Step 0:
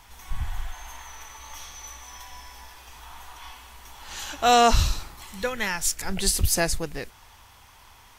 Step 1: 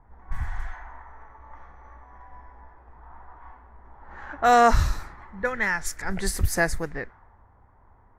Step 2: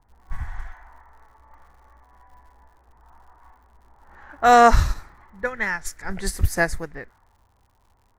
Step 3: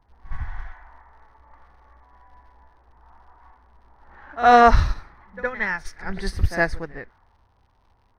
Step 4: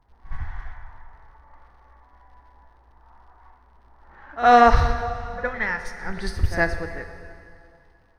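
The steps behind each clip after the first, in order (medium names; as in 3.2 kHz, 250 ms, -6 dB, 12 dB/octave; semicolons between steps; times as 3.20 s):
level-controlled noise filter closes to 550 Hz, open at -21.5 dBFS; resonant high shelf 2.3 kHz -7 dB, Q 3
crackle 120 per s -46 dBFS; upward expansion 1.5:1, over -35 dBFS; trim +4.5 dB
Savitzky-Golay filter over 15 samples; pre-echo 63 ms -13 dB
plate-style reverb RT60 2.5 s, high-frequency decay 0.9×, DRR 7.5 dB; trim -1 dB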